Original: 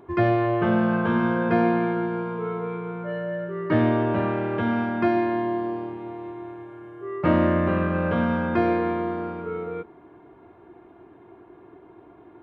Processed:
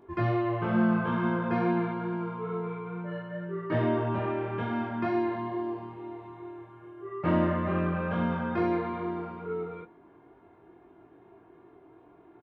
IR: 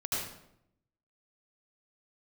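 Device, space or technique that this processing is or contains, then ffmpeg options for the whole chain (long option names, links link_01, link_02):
double-tracked vocal: -filter_complex "[0:a]asplit=2[link_01][link_02];[link_02]adelay=18,volume=-9dB[link_03];[link_01][link_03]amix=inputs=2:normalize=0,flanger=delay=22.5:depth=2.3:speed=2.3,volume=-3.5dB"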